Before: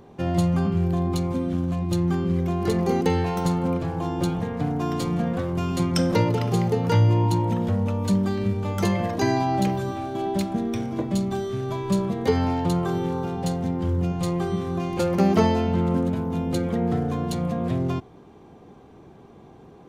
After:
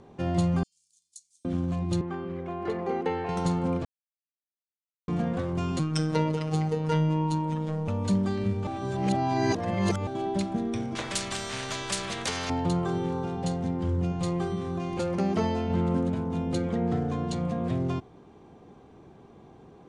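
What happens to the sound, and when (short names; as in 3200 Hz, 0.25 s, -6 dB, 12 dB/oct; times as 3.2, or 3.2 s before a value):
0.63–1.45 inverse Chebyshev high-pass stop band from 1500 Hz, stop band 70 dB
2.01–3.29 three-band isolator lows -13 dB, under 330 Hz, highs -19 dB, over 2900 Hz
3.85–5.08 mute
5.79–7.88 robotiser 156 Hz
8.67–10.07 reverse
10.95–12.5 spectral compressor 4:1
14.47–15.7 compressor 1.5:1, threshold -25 dBFS
16.63–17.48 LPF 9000 Hz 24 dB/oct
whole clip: steep low-pass 9800 Hz 48 dB/oct; gain -3.5 dB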